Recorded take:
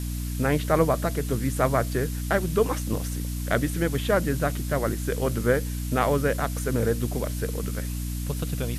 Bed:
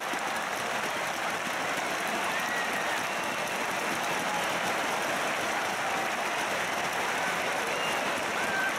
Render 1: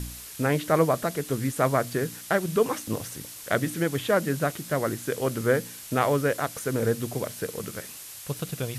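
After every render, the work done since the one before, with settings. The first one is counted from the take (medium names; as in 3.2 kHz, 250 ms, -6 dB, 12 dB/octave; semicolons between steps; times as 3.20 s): de-hum 60 Hz, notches 5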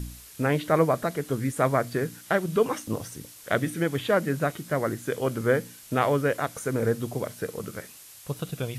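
noise print and reduce 6 dB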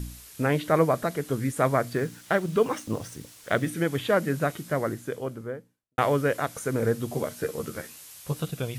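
1.93–3.67 s: median filter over 3 samples; 4.59–5.98 s: studio fade out; 7.09–8.48 s: doubling 13 ms -3.5 dB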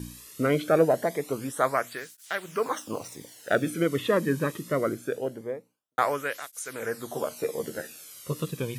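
in parallel at -7 dB: saturation -18.5 dBFS, distortion -13 dB; on the sum: cancelling through-zero flanger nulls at 0.23 Hz, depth 1.5 ms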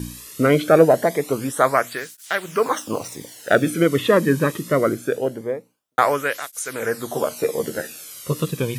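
trim +8 dB; peak limiter -2 dBFS, peak gain reduction 1 dB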